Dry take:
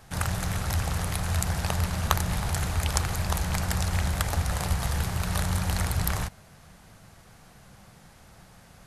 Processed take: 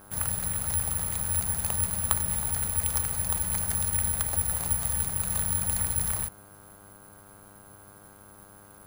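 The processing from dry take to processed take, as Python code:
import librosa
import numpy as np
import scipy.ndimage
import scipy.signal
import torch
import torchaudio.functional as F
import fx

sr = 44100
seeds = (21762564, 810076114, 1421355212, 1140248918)

y = (np.kron(scipy.signal.resample_poly(x, 1, 4), np.eye(4)[0]) * 4)[:len(x)]
y = fx.dmg_buzz(y, sr, base_hz=100.0, harmonics=16, level_db=-47.0, tilt_db=-2, odd_only=False)
y = y * librosa.db_to_amplitude(-7.5)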